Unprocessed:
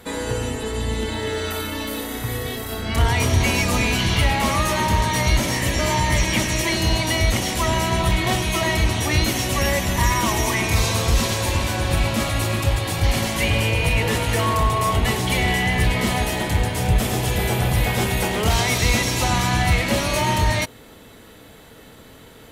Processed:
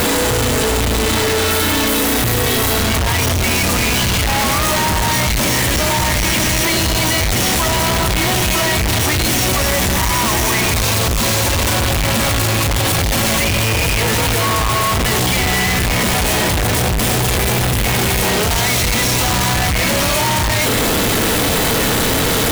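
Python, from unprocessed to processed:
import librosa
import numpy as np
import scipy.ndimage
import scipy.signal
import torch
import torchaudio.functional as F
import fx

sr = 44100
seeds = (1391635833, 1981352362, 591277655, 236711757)

y = np.sign(x) * np.sqrt(np.mean(np.square(x)))
y = F.gain(torch.from_numpy(y), 5.0).numpy()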